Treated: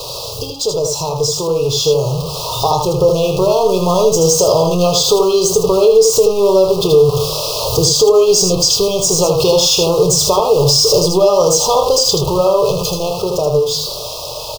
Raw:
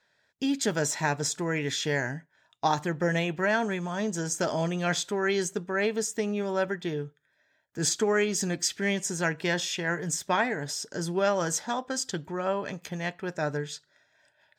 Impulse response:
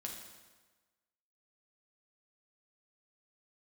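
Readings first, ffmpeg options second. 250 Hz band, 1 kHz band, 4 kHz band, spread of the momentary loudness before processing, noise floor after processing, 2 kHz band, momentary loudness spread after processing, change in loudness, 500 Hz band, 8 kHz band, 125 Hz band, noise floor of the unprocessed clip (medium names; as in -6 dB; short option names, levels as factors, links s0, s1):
+10.5 dB, +13.0 dB, +20.0 dB, 7 LU, -26 dBFS, -5.5 dB, 9 LU, +16.0 dB, +19.0 dB, +16.5 dB, +14.5 dB, -71 dBFS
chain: -filter_complex "[0:a]aeval=exprs='val(0)+0.5*0.0266*sgn(val(0))':c=same,acompressor=threshold=0.0355:ratio=6,firequalizer=gain_entry='entry(130,0);entry(230,-27);entry(450,3);entry(690,-8);entry(1900,-1);entry(2800,-13);entry(4700,-1);entry(7600,-12);entry(14000,-9)':delay=0.05:min_phase=1,asplit=2[s0][s1];[s1]aecho=0:1:79:0.562[s2];[s0][s2]amix=inputs=2:normalize=0,dynaudnorm=f=570:g=9:m=2.37,asuperstop=centerf=1800:order=20:qfactor=1.3,highshelf=f=8000:g=3,bandreject=f=50:t=h:w=6,bandreject=f=100:t=h:w=6,bandreject=f=150:t=h:w=6,asplit=2[s3][s4];[s4]adelay=27,volume=0.282[s5];[s3][s5]amix=inputs=2:normalize=0,alimiter=level_in=8.91:limit=0.891:release=50:level=0:latency=1,volume=0.891"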